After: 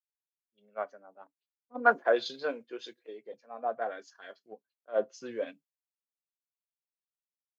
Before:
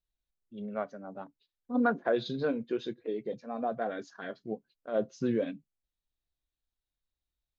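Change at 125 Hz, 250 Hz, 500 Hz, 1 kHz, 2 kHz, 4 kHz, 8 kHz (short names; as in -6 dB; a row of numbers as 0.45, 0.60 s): under -15 dB, -12.0 dB, 0.0 dB, +4.0 dB, +6.0 dB, +2.5 dB, n/a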